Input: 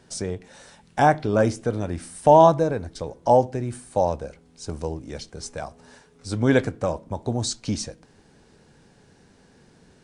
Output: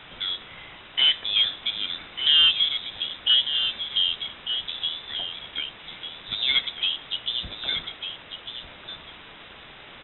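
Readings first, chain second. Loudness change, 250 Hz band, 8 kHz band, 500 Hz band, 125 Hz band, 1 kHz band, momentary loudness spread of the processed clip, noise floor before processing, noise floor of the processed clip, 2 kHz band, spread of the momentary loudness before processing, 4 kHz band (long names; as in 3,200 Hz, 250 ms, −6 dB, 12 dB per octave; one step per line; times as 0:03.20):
−0.5 dB, −23.5 dB, below −40 dB, −27.5 dB, below −20 dB, −20.5 dB, 18 LU, −56 dBFS, −46 dBFS, +2.0 dB, 19 LU, +21.0 dB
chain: rippled gain that drifts along the octave scale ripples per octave 1.6, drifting +0.51 Hz, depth 9 dB
high-pass filter 500 Hz 6 dB per octave
in parallel at +1 dB: downward compressor, threshold −28 dBFS, peak gain reduction 16.5 dB
on the sum: soft clipping −9 dBFS, distortion −15 dB
bit-depth reduction 6 bits, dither triangular
single-tap delay 1,198 ms −9 dB
voice inversion scrambler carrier 3,800 Hz
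level −2.5 dB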